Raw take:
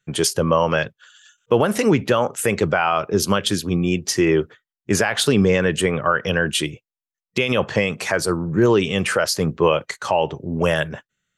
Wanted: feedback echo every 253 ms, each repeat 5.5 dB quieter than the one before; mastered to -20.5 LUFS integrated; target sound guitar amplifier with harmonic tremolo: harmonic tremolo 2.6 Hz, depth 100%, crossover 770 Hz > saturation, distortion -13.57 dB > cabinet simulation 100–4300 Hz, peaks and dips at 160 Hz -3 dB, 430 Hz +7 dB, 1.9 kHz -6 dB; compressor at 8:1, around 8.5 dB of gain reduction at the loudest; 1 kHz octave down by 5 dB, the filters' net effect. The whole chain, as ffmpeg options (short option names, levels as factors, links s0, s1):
-filter_complex "[0:a]equalizer=f=1000:t=o:g=-6.5,acompressor=threshold=0.0891:ratio=8,aecho=1:1:253|506|759|1012|1265|1518|1771:0.531|0.281|0.149|0.079|0.0419|0.0222|0.0118,acrossover=split=770[s0][s1];[s0]aeval=exprs='val(0)*(1-1/2+1/2*cos(2*PI*2.6*n/s))':c=same[s2];[s1]aeval=exprs='val(0)*(1-1/2-1/2*cos(2*PI*2.6*n/s))':c=same[s3];[s2][s3]amix=inputs=2:normalize=0,asoftclip=threshold=0.075,highpass=100,equalizer=f=160:t=q:w=4:g=-3,equalizer=f=430:t=q:w=4:g=7,equalizer=f=1900:t=q:w=4:g=-6,lowpass=f=4300:w=0.5412,lowpass=f=4300:w=1.3066,volume=3.55"